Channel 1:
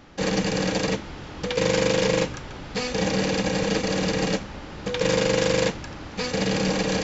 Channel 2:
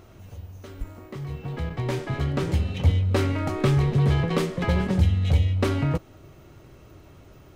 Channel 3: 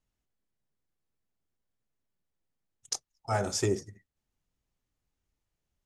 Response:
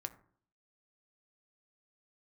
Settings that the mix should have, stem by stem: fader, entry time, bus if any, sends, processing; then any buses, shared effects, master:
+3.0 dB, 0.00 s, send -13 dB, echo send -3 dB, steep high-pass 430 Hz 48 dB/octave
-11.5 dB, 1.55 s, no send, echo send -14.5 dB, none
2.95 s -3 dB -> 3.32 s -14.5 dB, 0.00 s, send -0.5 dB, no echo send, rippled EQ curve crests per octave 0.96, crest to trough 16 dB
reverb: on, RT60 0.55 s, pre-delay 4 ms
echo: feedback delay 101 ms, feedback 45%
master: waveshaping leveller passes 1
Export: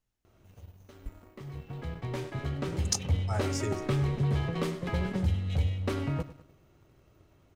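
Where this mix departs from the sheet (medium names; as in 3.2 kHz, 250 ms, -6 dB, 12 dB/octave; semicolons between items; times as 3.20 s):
stem 1: muted; stem 2: entry 1.55 s -> 0.25 s; stem 3: missing rippled EQ curve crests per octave 0.96, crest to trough 16 dB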